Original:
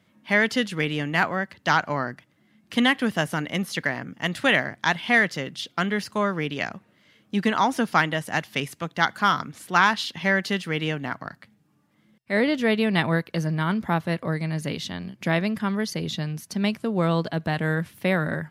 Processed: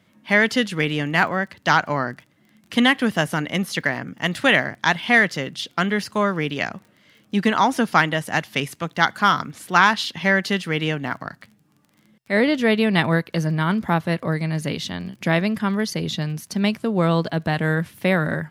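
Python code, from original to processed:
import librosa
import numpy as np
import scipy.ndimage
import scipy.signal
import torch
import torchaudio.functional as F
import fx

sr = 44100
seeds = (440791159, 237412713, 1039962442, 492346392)

y = fx.dmg_crackle(x, sr, seeds[0], per_s=25.0, level_db=-42.0)
y = y * 10.0 ** (3.5 / 20.0)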